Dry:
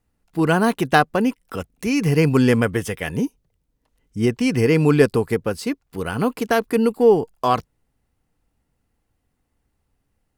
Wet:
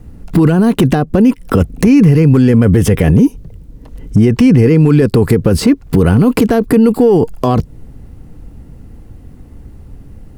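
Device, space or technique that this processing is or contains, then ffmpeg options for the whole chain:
mastering chain: -filter_complex "[0:a]equalizer=frequency=780:width_type=o:width=1.2:gain=-3,acrossover=split=880|2600[link_01][link_02][link_03];[link_01]acompressor=threshold=-28dB:ratio=4[link_04];[link_02]acompressor=threshold=-36dB:ratio=4[link_05];[link_03]acompressor=threshold=-40dB:ratio=4[link_06];[link_04][link_05][link_06]amix=inputs=3:normalize=0,acompressor=threshold=-32dB:ratio=2,asoftclip=type=tanh:threshold=-20.5dB,tiltshelf=frequency=720:gain=9,asoftclip=type=hard:threshold=-19dB,alimiter=level_in=30dB:limit=-1dB:release=50:level=0:latency=1,volume=-1dB"

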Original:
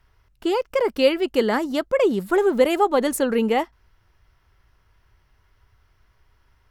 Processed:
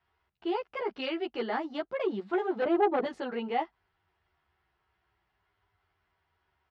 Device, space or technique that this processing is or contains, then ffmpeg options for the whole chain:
barber-pole flanger into a guitar amplifier: -filter_complex "[0:a]asettb=1/sr,asplit=3[link_01][link_02][link_03];[link_01]atrim=end=2.624[link_04];[link_02]atrim=start=2.62:end=3.05,asetpts=PTS-STARTPTS,afade=type=in:duration=0.004:curve=qsin,afade=type=out:start_time=0.426:duration=0.004:curve=qsin,tiltshelf=frequency=1300:gain=9.5[link_05];[link_03]atrim=start=3.046[link_06];[link_04][link_05]acrossfade=duration=0.004:curve1=hsin:curve2=qsin[link_07];[link_07][link_06]acrossfade=duration=0.004:curve1=qsin:curve2=hsin,asplit=2[link_08][link_09];[link_09]adelay=11,afreqshift=-0.46[link_10];[link_08][link_10]amix=inputs=2:normalize=1,asoftclip=type=tanh:threshold=-13.5dB,highpass=110,equalizer=frequency=120:width_type=q:width=4:gain=-9,equalizer=frequency=260:width_type=q:width=4:gain=-7,equalizer=frequency=370:width_type=q:width=4:gain=3,equalizer=frequency=530:width_type=q:width=4:gain=-6,equalizer=frequency=760:width_type=q:width=4:gain=7,lowpass=frequency=4200:width=0.5412,lowpass=frequency=4200:width=1.3066,volume=-6.5dB"

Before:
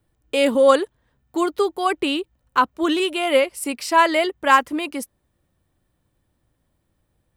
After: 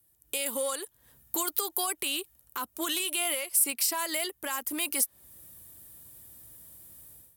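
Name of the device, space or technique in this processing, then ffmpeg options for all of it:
FM broadcast chain: -filter_complex "[0:a]highpass=48,dynaudnorm=framelen=100:gausssize=5:maxgain=16.5dB,acrossover=split=680|4900[link_01][link_02][link_03];[link_01]acompressor=threshold=-26dB:ratio=4[link_04];[link_02]acompressor=threshold=-16dB:ratio=4[link_05];[link_03]acompressor=threshold=-32dB:ratio=4[link_06];[link_04][link_05][link_06]amix=inputs=3:normalize=0,aemphasis=mode=production:type=50fm,alimiter=limit=-15dB:level=0:latency=1:release=125,asoftclip=type=hard:threshold=-17dB,lowpass=frequency=15000:width=0.5412,lowpass=frequency=15000:width=1.3066,aemphasis=mode=production:type=50fm,volume=-9dB"

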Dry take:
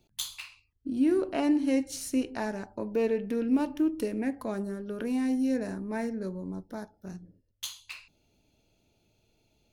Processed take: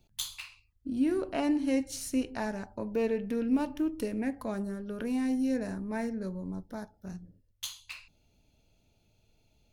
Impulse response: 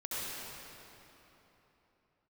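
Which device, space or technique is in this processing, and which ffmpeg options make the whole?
low shelf boost with a cut just above: -af "lowshelf=frequency=88:gain=8,equalizer=frequency=350:width_type=o:width=0.62:gain=-4.5,volume=-1dB"

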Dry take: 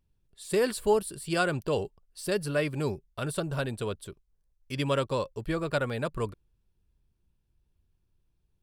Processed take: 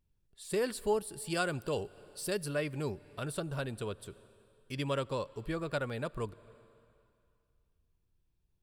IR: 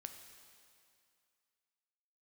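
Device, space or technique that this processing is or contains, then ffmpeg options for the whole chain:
compressed reverb return: -filter_complex "[0:a]asplit=2[link_01][link_02];[1:a]atrim=start_sample=2205[link_03];[link_02][link_03]afir=irnorm=-1:irlink=0,acompressor=threshold=-41dB:ratio=6,volume=-1.5dB[link_04];[link_01][link_04]amix=inputs=2:normalize=0,asettb=1/sr,asplit=3[link_05][link_06][link_07];[link_05]atrim=end=1.164[link_08];[link_06]atrim=start=1.16:end=2.54,asetpts=PTS-STARTPTS,afade=type=in:duration=0.004:curve=qsin,afade=type=out:start_time=1.376:duration=0.004:curve=qsin,highshelf=frequency=4900:gain=5.5[link_09];[link_07]atrim=start=2.536[link_10];[link_08][link_09]acrossfade=duration=0.004:curve1=hsin:curve2=qsin[link_11];[link_11][link_10]acrossfade=duration=0.004:curve1=qsin:curve2=hsin,volume=-7dB"

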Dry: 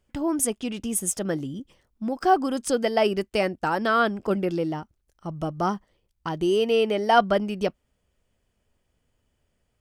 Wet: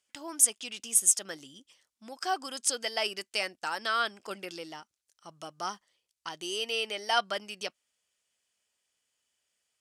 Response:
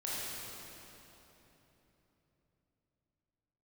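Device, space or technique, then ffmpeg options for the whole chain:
piezo pickup straight into a mixer: -af "lowpass=7600,aderivative,volume=8dB"

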